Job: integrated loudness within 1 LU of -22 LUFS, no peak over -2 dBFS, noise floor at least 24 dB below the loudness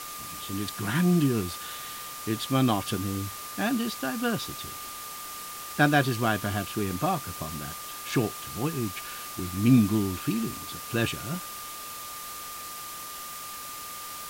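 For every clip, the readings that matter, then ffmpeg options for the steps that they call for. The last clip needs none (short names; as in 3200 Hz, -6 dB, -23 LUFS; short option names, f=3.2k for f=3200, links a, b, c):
steady tone 1200 Hz; tone level -41 dBFS; noise floor -39 dBFS; noise floor target -53 dBFS; loudness -29.0 LUFS; peak -9.0 dBFS; loudness target -22.0 LUFS
-> -af "bandreject=f=1.2k:w=30"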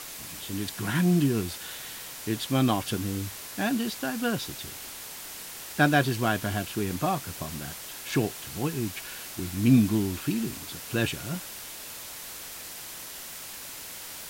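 steady tone none; noise floor -41 dBFS; noise floor target -54 dBFS
-> -af "afftdn=nr=13:nf=-41"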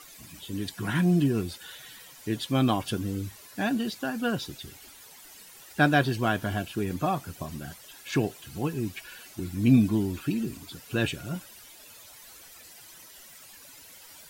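noise floor -50 dBFS; noise floor target -53 dBFS
-> -af "afftdn=nr=6:nf=-50"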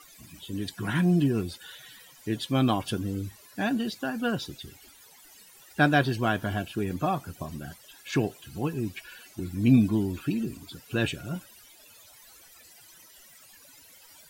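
noise floor -54 dBFS; loudness -28.5 LUFS; peak -9.0 dBFS; loudness target -22.0 LUFS
-> -af "volume=6.5dB"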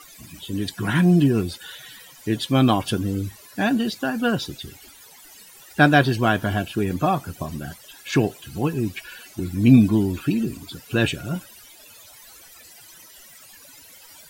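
loudness -22.0 LUFS; peak -2.5 dBFS; noise floor -47 dBFS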